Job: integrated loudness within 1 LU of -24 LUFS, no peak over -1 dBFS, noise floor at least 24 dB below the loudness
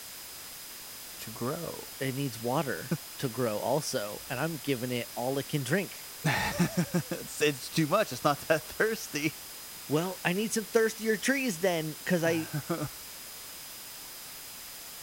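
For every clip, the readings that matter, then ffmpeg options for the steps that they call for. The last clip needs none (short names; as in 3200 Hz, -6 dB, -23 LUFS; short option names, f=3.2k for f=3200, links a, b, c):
steady tone 5000 Hz; tone level -52 dBFS; noise floor -44 dBFS; noise floor target -56 dBFS; loudness -31.5 LUFS; peak -10.0 dBFS; loudness target -24.0 LUFS
-> -af "bandreject=f=5k:w=30"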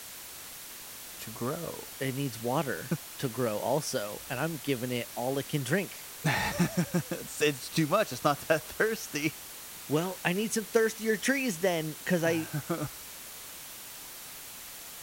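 steady tone none; noise floor -45 dBFS; noise floor target -56 dBFS
-> -af "afftdn=nr=11:nf=-45"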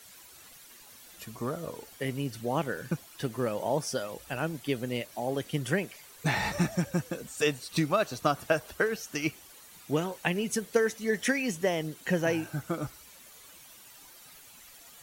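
noise floor -53 dBFS; noise floor target -55 dBFS
-> -af "afftdn=nr=6:nf=-53"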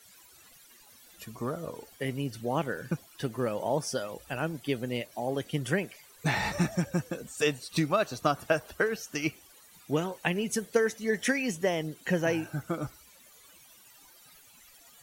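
noise floor -57 dBFS; loudness -31.0 LUFS; peak -10.0 dBFS; loudness target -24.0 LUFS
-> -af "volume=7dB"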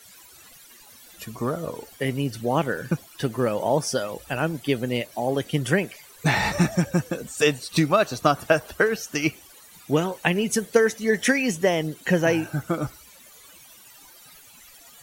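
loudness -24.0 LUFS; peak -3.0 dBFS; noise floor -50 dBFS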